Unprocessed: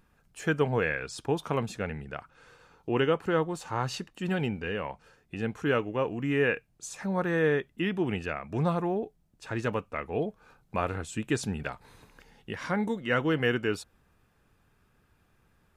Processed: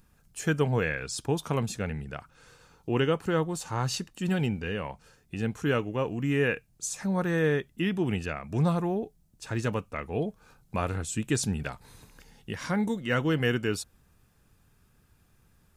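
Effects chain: tone controls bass +6 dB, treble +10 dB; trim -1.5 dB

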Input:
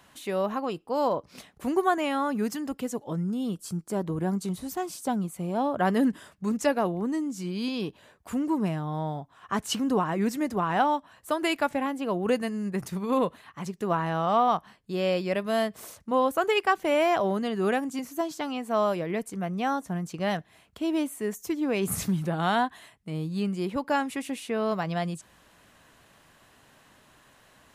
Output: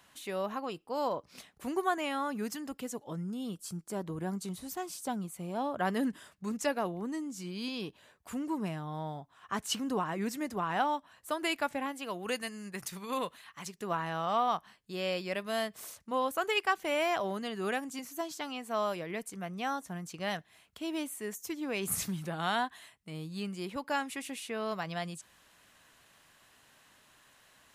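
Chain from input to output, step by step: tilt shelf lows -3 dB, about 1.1 kHz, from 11.91 s lows -8.5 dB, from 13.73 s lows -4.5 dB; trim -5.5 dB

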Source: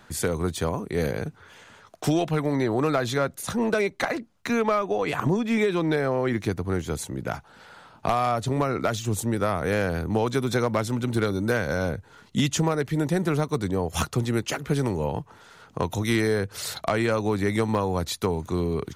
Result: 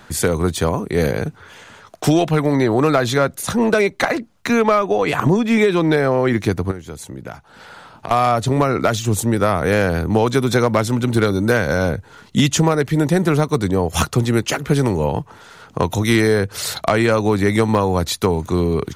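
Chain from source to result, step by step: 6.71–8.11 s: compression 4:1, threshold -38 dBFS, peak gain reduction 16 dB; trim +8 dB

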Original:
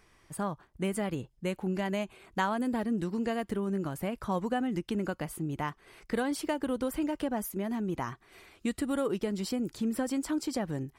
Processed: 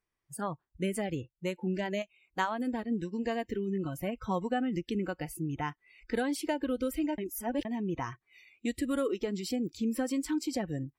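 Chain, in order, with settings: spectral noise reduction 25 dB; 2.02–3.24 s: upward expansion 1.5:1, over -40 dBFS; 7.18–7.65 s: reverse

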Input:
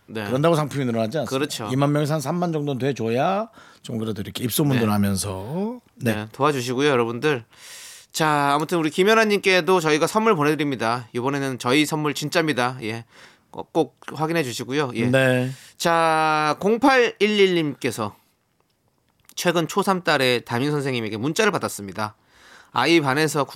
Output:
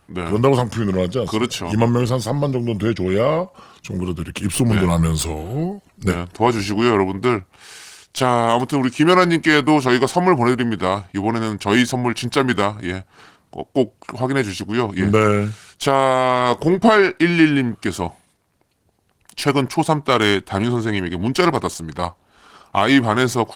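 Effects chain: tracing distortion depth 0.023 ms; pitch shift -3.5 st; trim +3.5 dB; Opus 24 kbps 48 kHz

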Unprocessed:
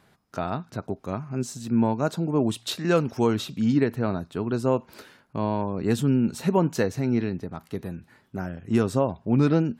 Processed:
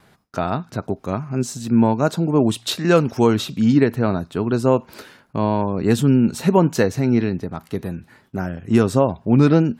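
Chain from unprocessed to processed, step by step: gate with hold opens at -52 dBFS; trim +6.5 dB

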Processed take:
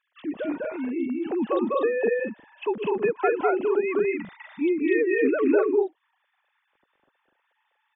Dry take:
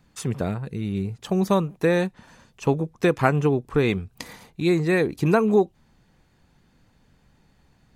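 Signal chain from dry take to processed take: formants replaced by sine waves; compression 6:1, threshold -21 dBFS, peak gain reduction 12 dB; on a send: loudspeakers at several distances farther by 69 m -1 dB, 83 m -3 dB

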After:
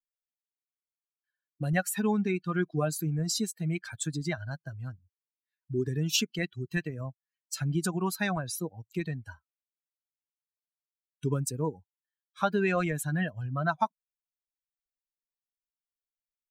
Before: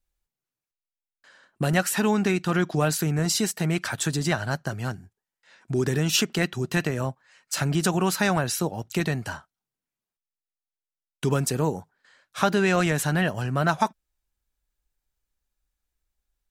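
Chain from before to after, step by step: expander on every frequency bin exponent 2; trim -2 dB

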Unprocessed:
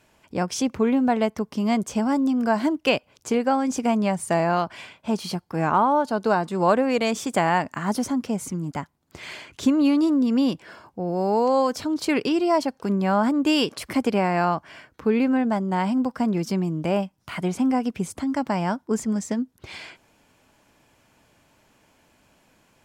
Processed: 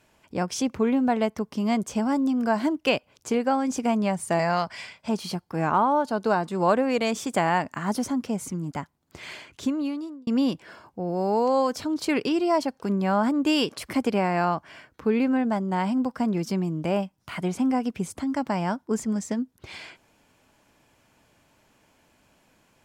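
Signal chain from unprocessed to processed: 4.39–5.09 s: graphic EQ with 31 bands 315 Hz -10 dB, 2 kHz +7 dB, 5 kHz +12 dB, 8 kHz +6 dB; 9.31–10.27 s: fade out; trim -2 dB

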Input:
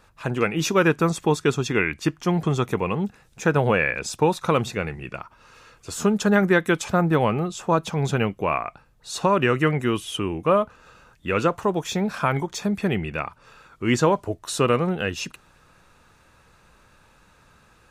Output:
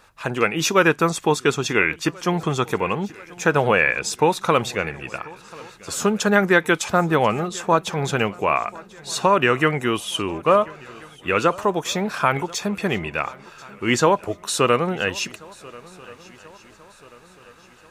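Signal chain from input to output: bass shelf 330 Hz -9 dB; shuffle delay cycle 1384 ms, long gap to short 3:1, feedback 43%, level -22.5 dB; trim +5 dB

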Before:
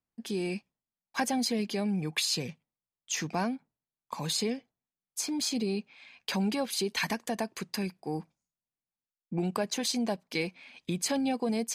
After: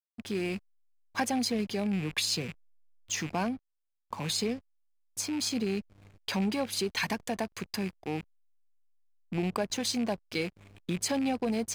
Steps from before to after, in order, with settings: rattle on loud lows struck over -45 dBFS, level -31 dBFS; mains buzz 100 Hz, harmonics 7, -54 dBFS -7 dB/octave; hysteresis with a dead band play -40.5 dBFS

